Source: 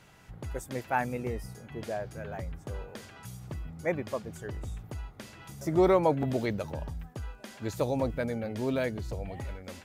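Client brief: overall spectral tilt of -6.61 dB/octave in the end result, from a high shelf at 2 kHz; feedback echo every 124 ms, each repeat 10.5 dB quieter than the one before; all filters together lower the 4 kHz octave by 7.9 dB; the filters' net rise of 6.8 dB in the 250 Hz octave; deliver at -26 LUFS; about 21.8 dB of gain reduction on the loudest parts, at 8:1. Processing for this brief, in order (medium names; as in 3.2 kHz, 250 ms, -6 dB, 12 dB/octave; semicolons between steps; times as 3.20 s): peaking EQ 250 Hz +9 dB; treble shelf 2 kHz -3 dB; peaking EQ 4 kHz -7 dB; compression 8:1, threshold -39 dBFS; feedback delay 124 ms, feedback 30%, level -10.5 dB; trim +17.5 dB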